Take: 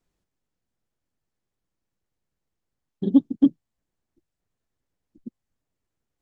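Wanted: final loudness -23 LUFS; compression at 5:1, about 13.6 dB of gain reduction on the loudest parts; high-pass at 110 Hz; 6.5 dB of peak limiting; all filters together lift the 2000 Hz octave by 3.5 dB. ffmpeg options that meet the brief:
-af "highpass=110,equalizer=f=2k:t=o:g=4.5,acompressor=threshold=-27dB:ratio=5,volume=15.5dB,alimiter=limit=-9dB:level=0:latency=1"

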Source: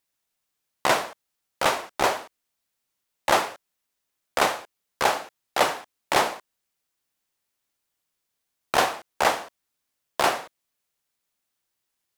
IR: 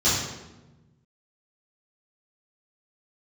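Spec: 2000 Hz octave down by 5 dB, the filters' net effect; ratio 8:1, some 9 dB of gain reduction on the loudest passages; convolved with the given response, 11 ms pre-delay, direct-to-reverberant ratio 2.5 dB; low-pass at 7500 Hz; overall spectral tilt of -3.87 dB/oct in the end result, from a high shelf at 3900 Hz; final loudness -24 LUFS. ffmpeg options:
-filter_complex "[0:a]lowpass=7.5k,equalizer=f=2k:t=o:g=-4.5,highshelf=f=3.9k:g=-8.5,acompressor=threshold=-26dB:ratio=8,asplit=2[a][b];[1:a]atrim=start_sample=2205,adelay=11[c];[b][c]afir=irnorm=-1:irlink=0,volume=-18.5dB[d];[a][d]amix=inputs=2:normalize=0,volume=9dB"

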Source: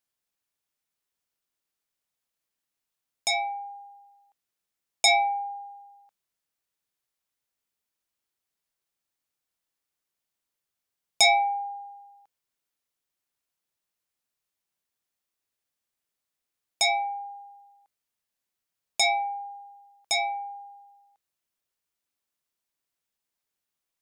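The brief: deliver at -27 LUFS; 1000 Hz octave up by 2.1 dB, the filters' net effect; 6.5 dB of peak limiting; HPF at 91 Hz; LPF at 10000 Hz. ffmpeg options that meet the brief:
-af "highpass=91,lowpass=10k,equalizer=f=1k:t=o:g=3,volume=-0.5dB,alimiter=limit=-17.5dB:level=0:latency=1"

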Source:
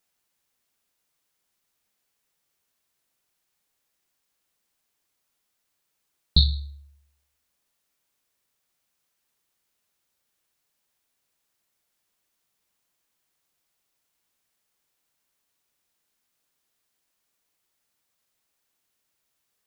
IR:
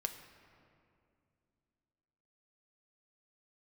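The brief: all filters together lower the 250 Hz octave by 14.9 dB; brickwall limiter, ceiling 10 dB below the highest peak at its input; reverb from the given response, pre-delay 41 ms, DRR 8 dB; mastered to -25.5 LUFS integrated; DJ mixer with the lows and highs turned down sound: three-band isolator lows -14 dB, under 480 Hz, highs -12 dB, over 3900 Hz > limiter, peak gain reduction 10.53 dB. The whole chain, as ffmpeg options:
-filter_complex "[0:a]equalizer=f=250:t=o:g=-3.5,alimiter=limit=-14dB:level=0:latency=1,asplit=2[a][b];[1:a]atrim=start_sample=2205,adelay=41[c];[b][c]afir=irnorm=-1:irlink=0,volume=-8dB[d];[a][d]amix=inputs=2:normalize=0,acrossover=split=480 3900:gain=0.2 1 0.251[e][f][g];[e][f][g]amix=inputs=3:normalize=0,volume=20.5dB,alimiter=limit=-10dB:level=0:latency=1"

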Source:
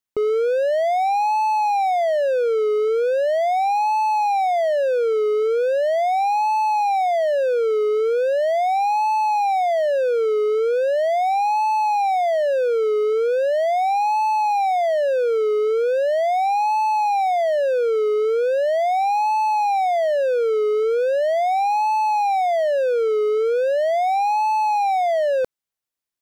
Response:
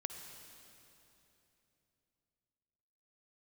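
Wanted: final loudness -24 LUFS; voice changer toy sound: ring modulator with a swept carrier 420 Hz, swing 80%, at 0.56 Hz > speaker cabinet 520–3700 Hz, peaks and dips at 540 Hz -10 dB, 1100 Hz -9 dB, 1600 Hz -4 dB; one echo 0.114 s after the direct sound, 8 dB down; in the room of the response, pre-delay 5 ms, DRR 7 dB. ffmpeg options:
-filter_complex "[0:a]aecho=1:1:114:0.398,asplit=2[a][b];[1:a]atrim=start_sample=2205,adelay=5[c];[b][c]afir=irnorm=-1:irlink=0,volume=-6dB[d];[a][d]amix=inputs=2:normalize=0,aeval=exprs='val(0)*sin(2*PI*420*n/s+420*0.8/0.56*sin(2*PI*0.56*n/s))':c=same,highpass=520,equalizer=f=540:t=q:w=4:g=-10,equalizer=f=1.1k:t=q:w=4:g=-9,equalizer=f=1.6k:t=q:w=4:g=-4,lowpass=f=3.7k:w=0.5412,lowpass=f=3.7k:w=1.3066,volume=3.5dB"

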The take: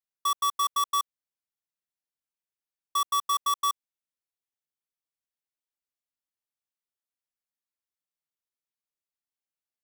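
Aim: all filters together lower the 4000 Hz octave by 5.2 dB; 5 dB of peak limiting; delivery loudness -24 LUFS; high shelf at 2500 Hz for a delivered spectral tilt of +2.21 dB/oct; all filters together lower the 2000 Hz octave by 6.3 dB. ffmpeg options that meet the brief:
-af "equalizer=f=2k:t=o:g=-7.5,highshelf=f=2.5k:g=5,equalizer=f=4k:t=o:g=-8.5,volume=9dB,alimiter=limit=-16.5dB:level=0:latency=1"

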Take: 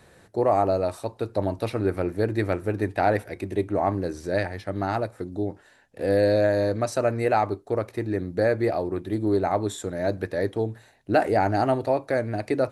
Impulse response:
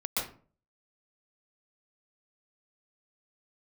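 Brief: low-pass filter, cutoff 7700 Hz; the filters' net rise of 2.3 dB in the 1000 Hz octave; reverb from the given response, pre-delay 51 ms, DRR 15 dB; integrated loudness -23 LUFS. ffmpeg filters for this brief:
-filter_complex "[0:a]lowpass=7.7k,equalizer=f=1k:t=o:g=3.5,asplit=2[a][b];[1:a]atrim=start_sample=2205,adelay=51[c];[b][c]afir=irnorm=-1:irlink=0,volume=-21.5dB[d];[a][d]amix=inputs=2:normalize=0,volume=1.5dB"

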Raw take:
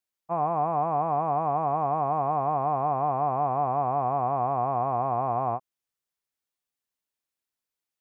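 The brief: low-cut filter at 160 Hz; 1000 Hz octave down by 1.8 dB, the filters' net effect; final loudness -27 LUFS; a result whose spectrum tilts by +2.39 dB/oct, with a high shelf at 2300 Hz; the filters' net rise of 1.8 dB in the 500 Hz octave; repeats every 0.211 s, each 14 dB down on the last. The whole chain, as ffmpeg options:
-af "highpass=160,equalizer=f=500:t=o:g=6.5,equalizer=f=1k:t=o:g=-8,highshelf=f=2.3k:g=7,aecho=1:1:211|422:0.2|0.0399,volume=0.5dB"

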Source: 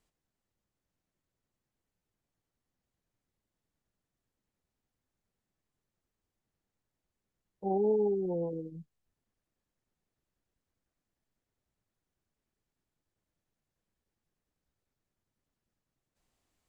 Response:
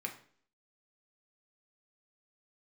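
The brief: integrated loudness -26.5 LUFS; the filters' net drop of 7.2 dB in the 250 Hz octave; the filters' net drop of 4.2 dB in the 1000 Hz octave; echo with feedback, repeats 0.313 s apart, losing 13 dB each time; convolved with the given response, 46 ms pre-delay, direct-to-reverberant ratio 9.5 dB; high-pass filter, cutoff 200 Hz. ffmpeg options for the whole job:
-filter_complex "[0:a]highpass=200,equalizer=f=250:t=o:g=-8.5,equalizer=f=1k:t=o:g=-5.5,aecho=1:1:313|626|939:0.224|0.0493|0.0108,asplit=2[a][b];[1:a]atrim=start_sample=2205,adelay=46[c];[b][c]afir=irnorm=-1:irlink=0,volume=-10.5dB[d];[a][d]amix=inputs=2:normalize=0,volume=9dB"

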